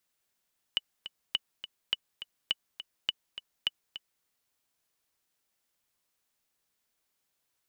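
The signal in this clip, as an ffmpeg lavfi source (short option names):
-f lavfi -i "aevalsrc='pow(10,(-13.5-12.5*gte(mod(t,2*60/207),60/207))/20)*sin(2*PI*2960*mod(t,60/207))*exp(-6.91*mod(t,60/207)/0.03)':d=3.47:s=44100"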